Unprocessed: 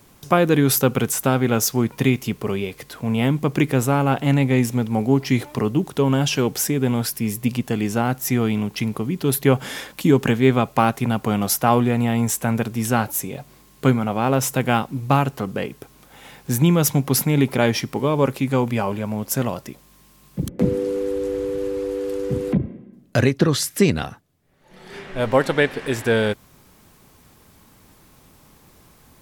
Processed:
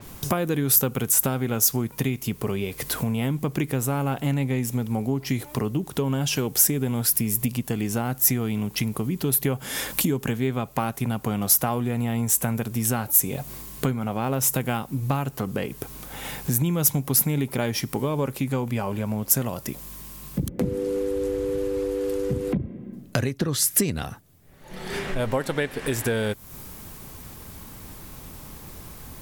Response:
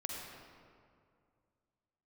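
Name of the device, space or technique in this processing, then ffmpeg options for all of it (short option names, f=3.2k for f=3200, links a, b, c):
ASMR close-microphone chain: -af "lowshelf=f=100:g=8,acompressor=threshold=-32dB:ratio=4,highshelf=f=11k:g=7.5,adynamicequalizer=threshold=0.00316:dfrequency=6200:dqfactor=0.7:tfrequency=6200:tqfactor=0.7:attack=5:release=100:ratio=0.375:range=3.5:mode=boostabove:tftype=highshelf,volume=7dB"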